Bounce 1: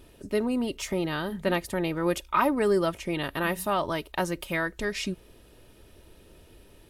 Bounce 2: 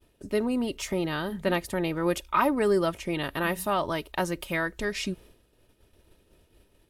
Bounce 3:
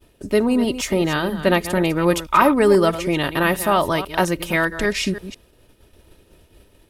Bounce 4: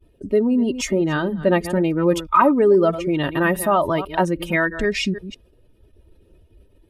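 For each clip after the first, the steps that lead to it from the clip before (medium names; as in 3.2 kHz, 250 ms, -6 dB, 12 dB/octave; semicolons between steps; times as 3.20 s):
expander -45 dBFS
chunks repeated in reverse 162 ms, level -12 dB; trim +9 dB
spectral contrast enhancement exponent 1.6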